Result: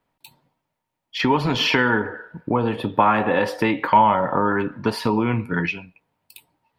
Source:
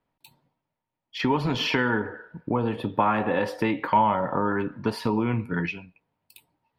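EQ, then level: bass shelf 500 Hz -3.5 dB; +6.5 dB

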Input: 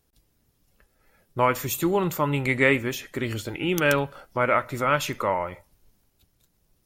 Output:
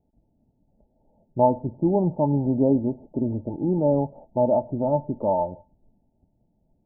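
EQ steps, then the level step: rippled Chebyshev low-pass 910 Hz, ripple 9 dB; +8.0 dB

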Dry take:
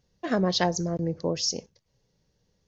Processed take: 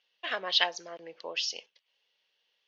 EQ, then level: high-pass 600 Hz 12 dB/octave; four-pole ladder low-pass 3.3 kHz, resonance 65%; tilt EQ +3.5 dB/octave; +7.5 dB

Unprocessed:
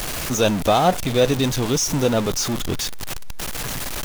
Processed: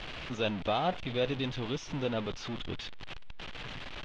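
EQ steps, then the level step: four-pole ladder low-pass 3.8 kHz, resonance 40%; -5.5 dB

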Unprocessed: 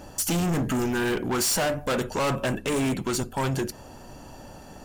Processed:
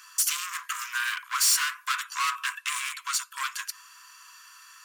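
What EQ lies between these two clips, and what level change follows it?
Chebyshev high-pass 1 kHz, order 10; +3.5 dB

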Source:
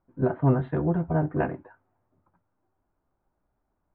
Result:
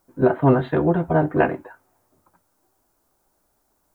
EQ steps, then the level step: tone controls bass -14 dB, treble +9 dB; bass shelf 400 Hz +9.5 dB; treble shelf 2.4 kHz +11 dB; +6.0 dB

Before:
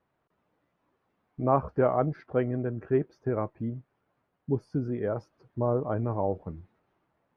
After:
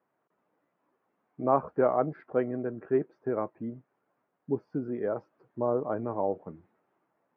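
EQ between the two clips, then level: band-pass 220–2100 Hz; 0.0 dB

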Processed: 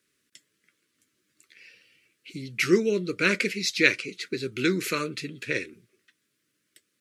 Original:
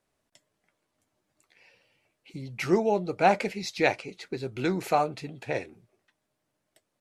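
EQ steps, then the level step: high-pass 380 Hz 6 dB/octave; Butterworth band-stop 770 Hz, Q 0.71; +8.5 dB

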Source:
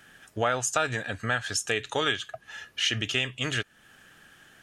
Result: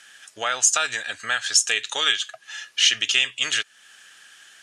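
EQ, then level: frequency weighting ITU-R 468; 0.0 dB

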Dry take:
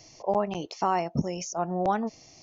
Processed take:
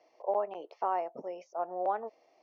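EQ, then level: ladder band-pass 600 Hz, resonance 35%; distance through air 130 m; tilt EQ +4 dB/octave; +8.5 dB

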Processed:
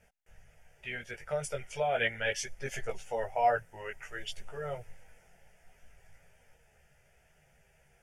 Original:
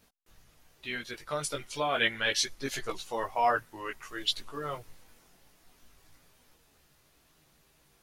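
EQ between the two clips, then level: dynamic bell 1.7 kHz, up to -6 dB, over -42 dBFS, Q 0.71; distance through air 56 m; static phaser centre 1.1 kHz, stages 6; +4.0 dB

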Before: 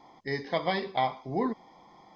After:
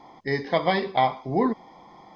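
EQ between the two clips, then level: treble shelf 4.4 kHz -6 dB; +6.5 dB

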